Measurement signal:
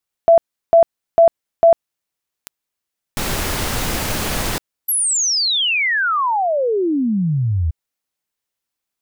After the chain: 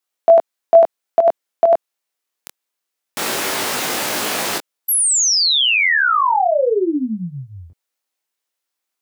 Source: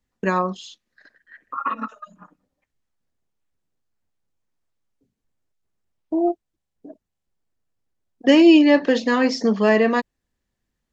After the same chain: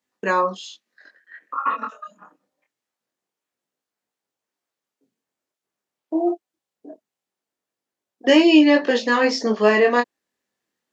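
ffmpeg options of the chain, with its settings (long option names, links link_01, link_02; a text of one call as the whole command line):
ffmpeg -i in.wav -af "highpass=320,flanger=delay=19.5:depth=5.8:speed=0.24,volume=5.5dB" out.wav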